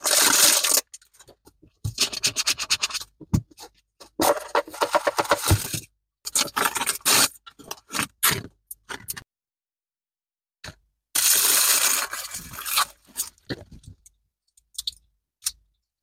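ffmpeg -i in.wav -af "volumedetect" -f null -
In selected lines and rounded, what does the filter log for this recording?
mean_volume: -25.9 dB
max_volume: -5.4 dB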